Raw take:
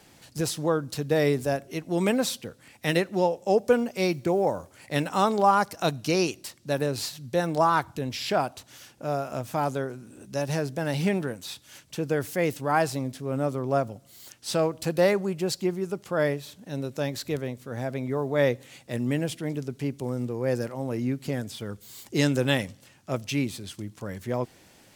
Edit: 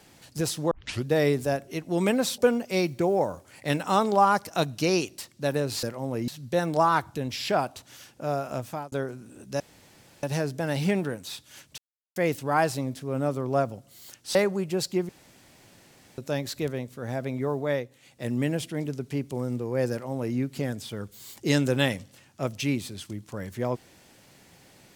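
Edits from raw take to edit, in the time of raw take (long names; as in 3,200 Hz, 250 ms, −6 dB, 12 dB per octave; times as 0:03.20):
0:00.71: tape start 0.35 s
0:02.38–0:03.64: remove
0:09.41–0:09.73: fade out
0:10.41: splice in room tone 0.63 s
0:11.96–0:12.34: silence
0:14.53–0:15.04: remove
0:15.78–0:16.87: fill with room tone
0:18.24–0:18.99: duck −9.5 dB, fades 0.28 s
0:20.60–0:21.05: duplicate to 0:07.09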